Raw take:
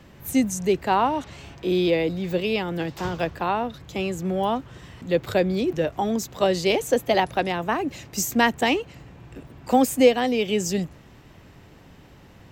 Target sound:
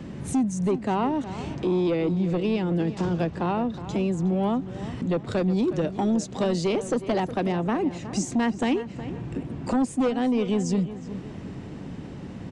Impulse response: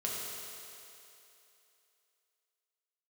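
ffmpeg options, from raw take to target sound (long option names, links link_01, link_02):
-filter_complex "[0:a]equalizer=frequency=220:width=0.61:gain=13,acompressor=threshold=-32dB:ratio=2,aeval=exprs='0.211*sin(PI/2*1.58*val(0)/0.211)':channel_layout=same,asplit=2[link_01][link_02];[link_02]adelay=365,lowpass=frequency=3000:poles=1,volume=-13dB,asplit=2[link_03][link_04];[link_04]adelay=365,lowpass=frequency=3000:poles=1,volume=0.37,asplit=2[link_05][link_06];[link_06]adelay=365,lowpass=frequency=3000:poles=1,volume=0.37,asplit=2[link_07][link_08];[link_08]adelay=365,lowpass=frequency=3000:poles=1,volume=0.37[link_09];[link_03][link_05][link_07][link_09]amix=inputs=4:normalize=0[link_10];[link_01][link_10]amix=inputs=2:normalize=0,aresample=22050,aresample=44100,asettb=1/sr,asplit=3[link_11][link_12][link_13];[link_11]atrim=end=5.234[link_14];[link_12]atrim=start=5.23:end=6.66,asetpts=PTS-STARTPTS,afade=type=in:duration=0.004:curve=qsin,afade=type=out:start_time=1.426:duration=0.004:curve=qsin,adynamicequalizer=threshold=0.0112:dfrequency=2700:dqfactor=0.7:tfrequency=2700:tqfactor=0.7:attack=5:release=100:ratio=0.375:range=2.5:mode=boostabove:tftype=highshelf[link_15];[link_13]atrim=start=6.656[link_16];[link_14][link_15]acrossfade=duration=0.004:curve1=hsin:curve2=qsin[link_17];[link_17][link_16]acrossfade=duration=0.004:curve1=qsin:curve2=hsin,volume=-5dB"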